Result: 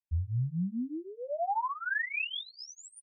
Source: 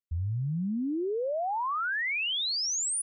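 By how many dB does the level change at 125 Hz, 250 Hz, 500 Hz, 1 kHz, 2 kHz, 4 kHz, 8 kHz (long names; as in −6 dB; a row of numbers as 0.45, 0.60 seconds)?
−1.0 dB, −4.0 dB, −6.5 dB, −2.0 dB, −2.5 dB, −11.0 dB, below −20 dB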